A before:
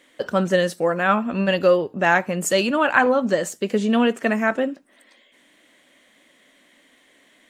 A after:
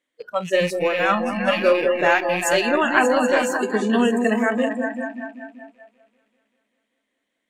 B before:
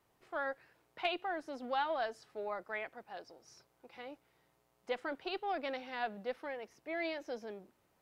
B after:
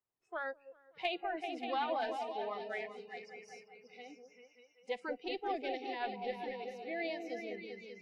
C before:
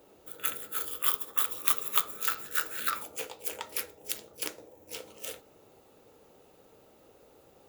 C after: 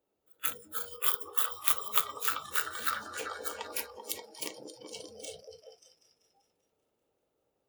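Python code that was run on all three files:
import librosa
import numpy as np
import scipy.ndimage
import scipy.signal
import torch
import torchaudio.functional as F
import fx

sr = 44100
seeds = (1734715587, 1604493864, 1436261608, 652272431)

y = fx.rattle_buzz(x, sr, strikes_db=-36.0, level_db=-15.0)
y = fx.echo_opening(y, sr, ms=194, hz=750, octaves=2, feedback_pct=70, wet_db=-3)
y = fx.noise_reduce_blind(y, sr, reduce_db=22)
y = y * librosa.db_to_amplitude(-1.0)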